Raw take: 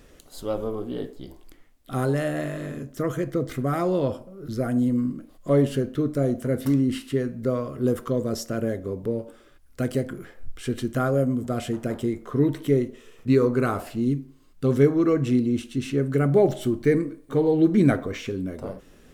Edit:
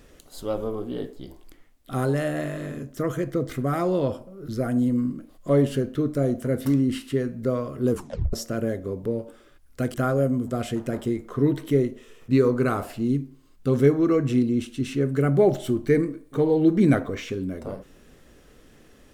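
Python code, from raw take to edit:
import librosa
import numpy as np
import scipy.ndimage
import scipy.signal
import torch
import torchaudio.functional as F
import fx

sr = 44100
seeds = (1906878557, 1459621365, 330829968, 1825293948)

y = fx.edit(x, sr, fx.tape_stop(start_s=7.91, length_s=0.42),
    fx.cut(start_s=9.94, length_s=0.97), tone=tone)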